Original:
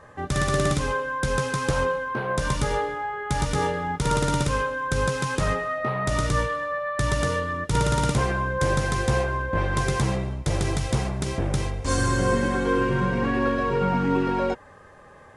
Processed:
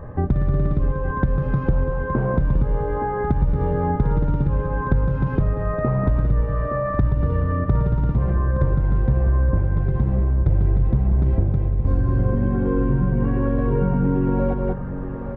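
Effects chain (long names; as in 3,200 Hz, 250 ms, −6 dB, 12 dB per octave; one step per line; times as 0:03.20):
spectral tilt −3.5 dB per octave
single-tap delay 188 ms −9.5 dB
downward compressor 6 to 1, threshold −25 dBFS, peak gain reduction 17 dB
head-to-tape spacing loss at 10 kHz 44 dB, from 0:13.19 at 10 kHz 35 dB
repeating echo 868 ms, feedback 41%, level −11 dB
level +8.5 dB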